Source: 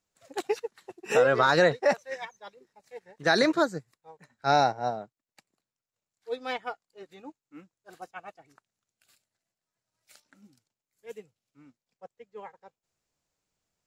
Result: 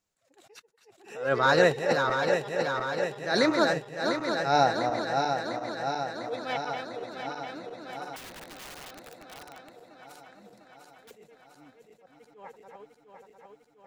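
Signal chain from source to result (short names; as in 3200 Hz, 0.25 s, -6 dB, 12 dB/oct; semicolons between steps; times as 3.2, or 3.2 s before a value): regenerating reverse delay 0.35 s, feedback 81%, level -6 dB; 8.16–11.11 wrapped overs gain 38.5 dB; attack slew limiter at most 110 dB/s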